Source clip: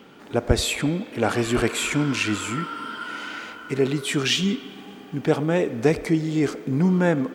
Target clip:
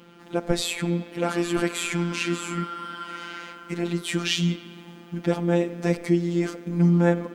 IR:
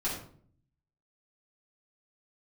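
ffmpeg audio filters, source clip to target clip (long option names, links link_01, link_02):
-af "afftfilt=real='hypot(re,im)*cos(PI*b)':imag='0':win_size=1024:overlap=0.75,equalizer=frequency=240:width=3.7:gain=10"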